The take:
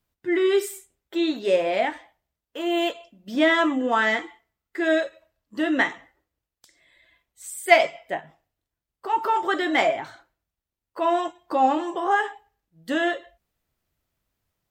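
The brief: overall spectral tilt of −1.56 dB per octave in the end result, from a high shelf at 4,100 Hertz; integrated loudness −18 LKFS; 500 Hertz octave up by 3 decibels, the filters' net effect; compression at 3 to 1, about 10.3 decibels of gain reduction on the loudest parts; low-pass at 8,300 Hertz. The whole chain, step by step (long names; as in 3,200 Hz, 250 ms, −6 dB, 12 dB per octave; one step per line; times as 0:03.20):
low-pass filter 8,300 Hz
parametric band 500 Hz +4.5 dB
high-shelf EQ 4,100 Hz −7 dB
downward compressor 3 to 1, threshold −21 dBFS
level +8.5 dB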